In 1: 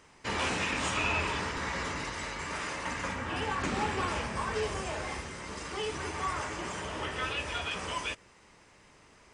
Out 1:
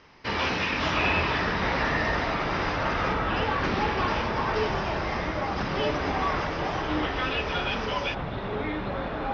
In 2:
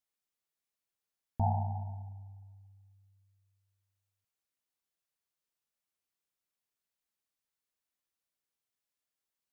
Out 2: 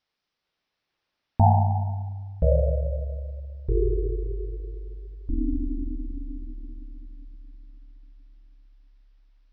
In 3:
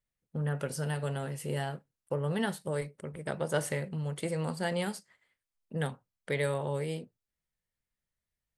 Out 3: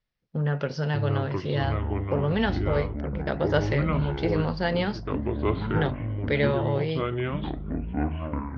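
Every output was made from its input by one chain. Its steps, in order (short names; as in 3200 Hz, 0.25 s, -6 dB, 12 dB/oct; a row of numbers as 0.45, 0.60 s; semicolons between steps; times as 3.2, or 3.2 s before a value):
steep low-pass 5600 Hz 72 dB/oct; echoes that change speed 0.447 s, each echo -6 st, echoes 3; match loudness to -27 LUFS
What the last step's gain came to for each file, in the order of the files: +4.5, +12.5, +6.0 dB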